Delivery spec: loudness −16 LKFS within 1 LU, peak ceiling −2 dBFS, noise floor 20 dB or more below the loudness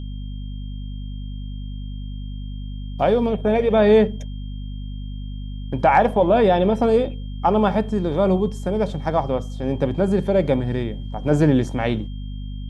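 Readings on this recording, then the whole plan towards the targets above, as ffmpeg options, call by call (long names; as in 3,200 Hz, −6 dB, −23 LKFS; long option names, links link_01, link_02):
mains hum 50 Hz; hum harmonics up to 250 Hz; level of the hum −28 dBFS; interfering tone 3,200 Hz; level of the tone −49 dBFS; integrated loudness −20.0 LKFS; sample peak −3.5 dBFS; target loudness −16.0 LKFS
→ -af "bandreject=frequency=50:width_type=h:width=6,bandreject=frequency=100:width_type=h:width=6,bandreject=frequency=150:width_type=h:width=6,bandreject=frequency=200:width_type=h:width=6,bandreject=frequency=250:width_type=h:width=6"
-af "bandreject=frequency=3200:width=30"
-af "volume=4dB,alimiter=limit=-2dB:level=0:latency=1"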